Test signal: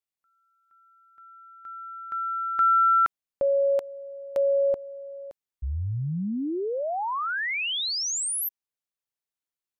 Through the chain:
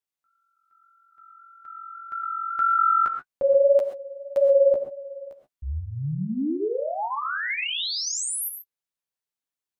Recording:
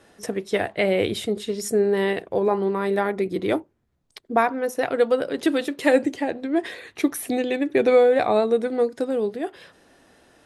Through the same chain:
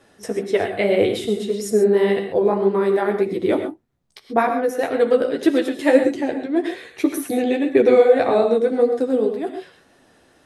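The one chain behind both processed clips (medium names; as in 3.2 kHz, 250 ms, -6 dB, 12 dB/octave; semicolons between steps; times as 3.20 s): dynamic bell 370 Hz, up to +5 dB, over -30 dBFS, Q 0.88; flange 1.8 Hz, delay 6.8 ms, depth 9.1 ms, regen -15%; gated-style reverb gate 150 ms rising, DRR 6.5 dB; trim +2.5 dB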